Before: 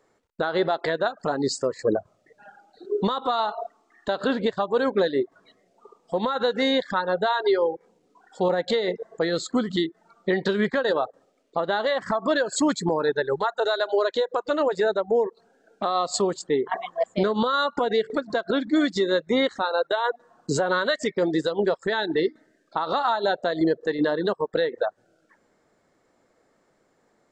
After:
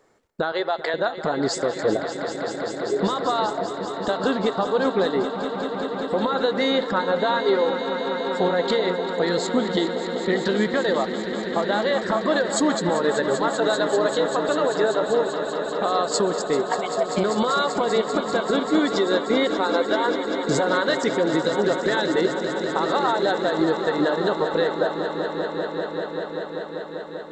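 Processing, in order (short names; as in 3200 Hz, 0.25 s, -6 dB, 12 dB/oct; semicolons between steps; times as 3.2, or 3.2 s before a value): 0.52–0.94 HPF 480 Hz 12 dB/oct; in parallel at +1.5 dB: compressor, threshold -29 dBFS, peak gain reduction 11.5 dB; on the sum: swelling echo 0.195 s, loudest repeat 5, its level -12 dB; gain -2.5 dB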